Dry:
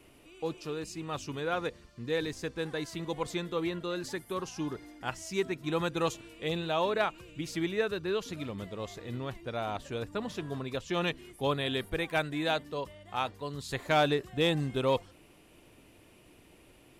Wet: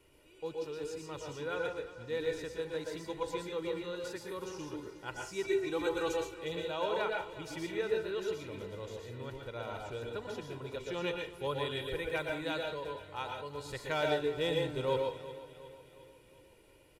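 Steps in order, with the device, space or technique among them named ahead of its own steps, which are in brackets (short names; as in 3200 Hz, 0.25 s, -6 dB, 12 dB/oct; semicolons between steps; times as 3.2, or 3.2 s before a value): microphone above a desk (comb 2.1 ms, depth 55%; reverb RT60 0.30 s, pre-delay 0.112 s, DRR 1 dB); 5.43–6.34 comb 2.6 ms, depth 87%; feedback echo 0.361 s, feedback 51%, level -15 dB; gain -8.5 dB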